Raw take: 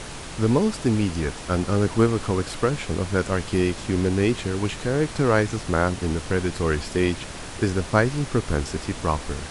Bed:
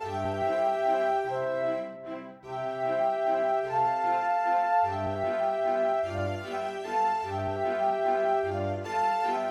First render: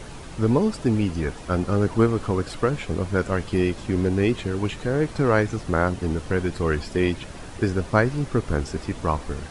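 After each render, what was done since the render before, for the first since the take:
broadband denoise 8 dB, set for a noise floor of −36 dBFS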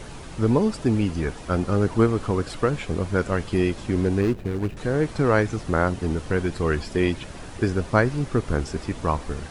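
0:04.21–0:04.77: running median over 41 samples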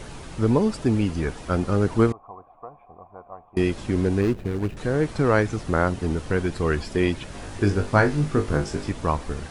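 0:02.12–0:03.57: formant resonators in series a
0:07.30–0:08.91: flutter between parallel walls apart 3.4 metres, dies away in 0.22 s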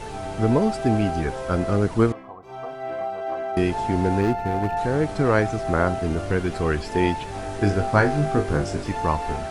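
mix in bed −2 dB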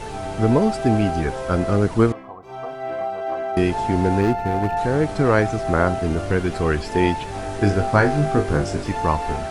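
level +2.5 dB
brickwall limiter −3 dBFS, peak gain reduction 1.5 dB

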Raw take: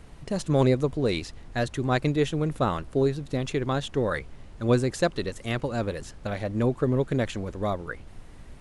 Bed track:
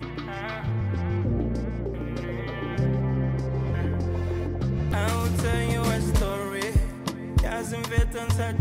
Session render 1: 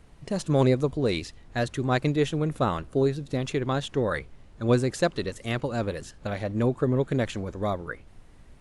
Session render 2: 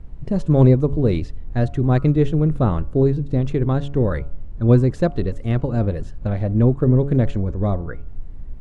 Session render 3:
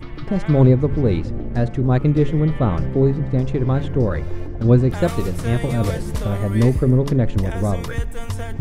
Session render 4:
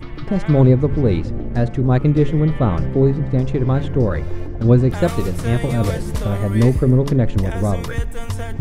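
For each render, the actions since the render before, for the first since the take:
noise reduction from a noise print 6 dB
spectral tilt −4 dB per octave; hum removal 141.3 Hz, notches 10
mix in bed track −2.5 dB
level +1.5 dB; brickwall limiter −2 dBFS, peak gain reduction 1.5 dB

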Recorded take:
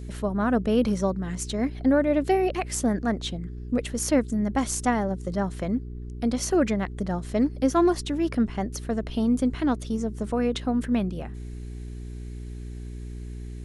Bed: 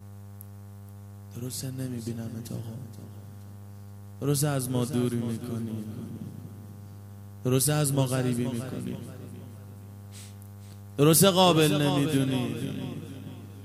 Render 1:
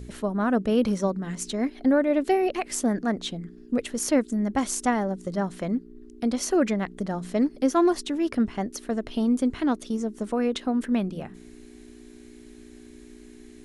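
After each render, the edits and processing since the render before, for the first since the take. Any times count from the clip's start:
hum removal 60 Hz, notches 3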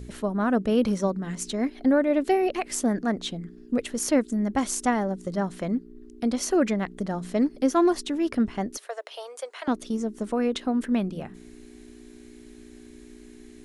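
0:08.77–0:09.68: Butterworth high-pass 500 Hz 48 dB per octave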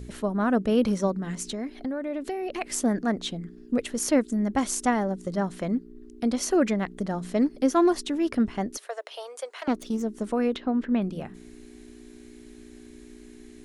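0:01.37–0:02.61: downward compressor 5 to 1, threshold −28 dBFS
0:09.57–0:10.02: phase distortion by the signal itself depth 0.15 ms
0:10.56–0:11.02: high-frequency loss of the air 210 metres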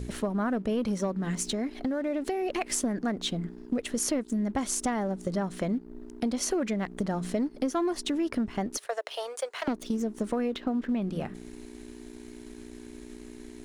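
leveller curve on the samples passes 1
downward compressor, threshold −26 dBFS, peak gain reduction 11 dB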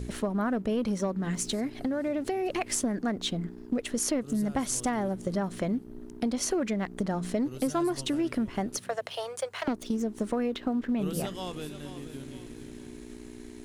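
mix in bed −18 dB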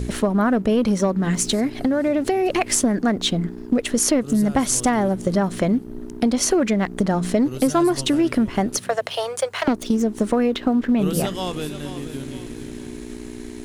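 level +10 dB

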